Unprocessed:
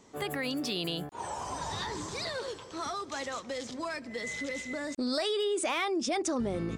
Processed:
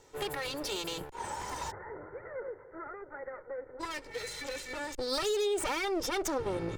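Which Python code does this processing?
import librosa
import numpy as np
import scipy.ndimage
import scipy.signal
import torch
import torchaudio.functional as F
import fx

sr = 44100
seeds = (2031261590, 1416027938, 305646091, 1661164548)

y = fx.lower_of_two(x, sr, delay_ms=2.2)
y = fx.cheby_ripple(y, sr, hz=2100.0, ripple_db=9, at=(1.7, 3.79), fade=0.02)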